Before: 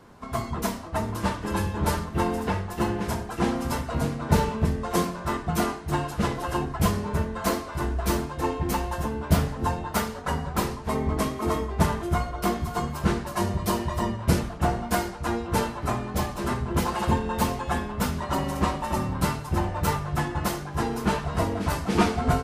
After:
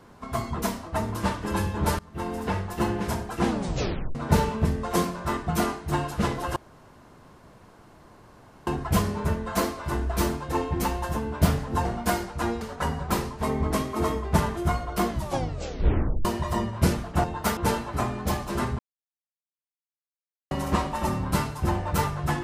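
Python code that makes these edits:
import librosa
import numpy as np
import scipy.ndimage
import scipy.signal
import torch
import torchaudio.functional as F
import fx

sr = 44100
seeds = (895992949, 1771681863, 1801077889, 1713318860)

y = fx.edit(x, sr, fx.fade_in_from(start_s=1.99, length_s=0.59, floor_db=-22.5),
    fx.tape_stop(start_s=3.47, length_s=0.68),
    fx.insert_room_tone(at_s=6.56, length_s=2.11),
    fx.swap(start_s=9.74, length_s=0.33, other_s=14.7, other_length_s=0.76),
    fx.tape_stop(start_s=12.54, length_s=1.17),
    fx.silence(start_s=16.68, length_s=1.72), tone=tone)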